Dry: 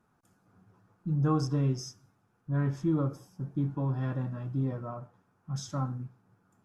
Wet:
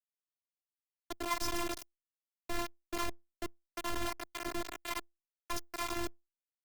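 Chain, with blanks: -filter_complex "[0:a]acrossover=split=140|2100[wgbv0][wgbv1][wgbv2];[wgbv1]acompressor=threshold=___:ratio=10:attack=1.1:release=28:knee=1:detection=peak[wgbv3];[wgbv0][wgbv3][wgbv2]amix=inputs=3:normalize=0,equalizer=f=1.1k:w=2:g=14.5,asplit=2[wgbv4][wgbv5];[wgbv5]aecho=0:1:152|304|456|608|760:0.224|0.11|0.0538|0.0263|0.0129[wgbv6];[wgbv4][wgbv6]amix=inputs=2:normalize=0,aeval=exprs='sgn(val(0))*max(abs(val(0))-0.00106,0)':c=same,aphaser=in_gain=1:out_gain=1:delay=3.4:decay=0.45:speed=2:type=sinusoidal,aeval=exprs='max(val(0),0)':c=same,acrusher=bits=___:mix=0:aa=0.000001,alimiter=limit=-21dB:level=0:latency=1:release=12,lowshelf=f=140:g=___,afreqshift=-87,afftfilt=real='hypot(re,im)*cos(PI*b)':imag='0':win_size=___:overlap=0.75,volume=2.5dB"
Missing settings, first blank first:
-39dB, 4, -5, 512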